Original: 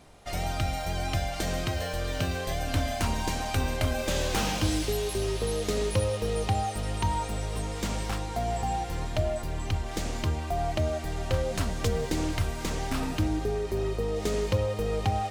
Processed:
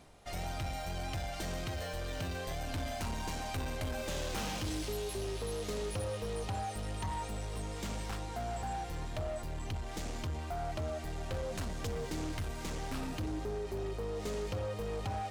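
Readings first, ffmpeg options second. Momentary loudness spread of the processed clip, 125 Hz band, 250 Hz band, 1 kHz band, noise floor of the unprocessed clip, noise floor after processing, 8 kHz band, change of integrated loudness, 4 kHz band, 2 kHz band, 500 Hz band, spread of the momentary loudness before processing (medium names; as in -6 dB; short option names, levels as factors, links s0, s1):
3 LU, -9.5 dB, -9.0 dB, -8.5 dB, -35 dBFS, -42 dBFS, -8.5 dB, -8.5 dB, -8.5 dB, -8.0 dB, -8.5 dB, 4 LU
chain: -af "areverse,acompressor=mode=upward:threshold=0.00794:ratio=2.5,areverse,asoftclip=type=tanh:threshold=0.0473,volume=0.531"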